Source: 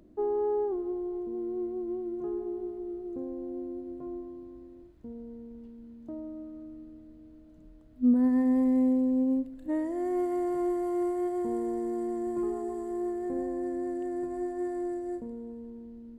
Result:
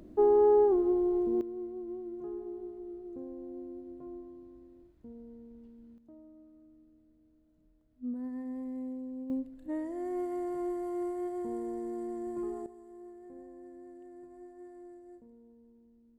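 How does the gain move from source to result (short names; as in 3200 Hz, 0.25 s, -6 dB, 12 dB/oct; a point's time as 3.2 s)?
+6 dB
from 1.41 s -6 dB
from 5.98 s -14.5 dB
from 9.3 s -5.5 dB
from 12.66 s -17 dB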